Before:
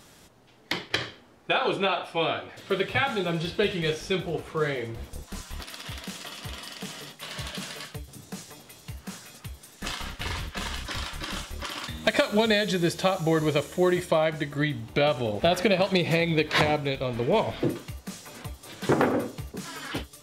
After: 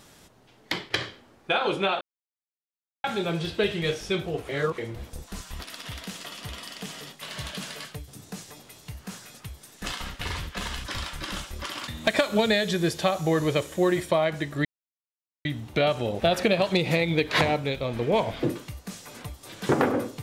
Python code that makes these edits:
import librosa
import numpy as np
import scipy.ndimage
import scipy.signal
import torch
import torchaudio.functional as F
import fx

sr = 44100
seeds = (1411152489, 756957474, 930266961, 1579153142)

y = fx.edit(x, sr, fx.silence(start_s=2.01, length_s=1.03),
    fx.reverse_span(start_s=4.49, length_s=0.29),
    fx.insert_silence(at_s=14.65, length_s=0.8), tone=tone)